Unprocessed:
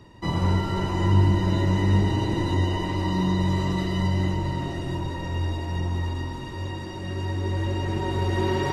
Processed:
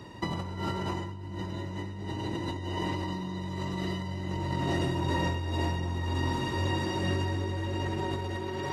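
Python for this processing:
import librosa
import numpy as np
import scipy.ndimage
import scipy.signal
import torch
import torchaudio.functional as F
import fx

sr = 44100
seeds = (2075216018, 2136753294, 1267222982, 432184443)

y = fx.low_shelf(x, sr, hz=170.0, db=-3.5)
y = fx.over_compress(y, sr, threshold_db=-32.0, ratio=-1.0)
y = scipy.signal.sosfilt(scipy.signal.butter(2, 63.0, 'highpass', fs=sr, output='sos'), y)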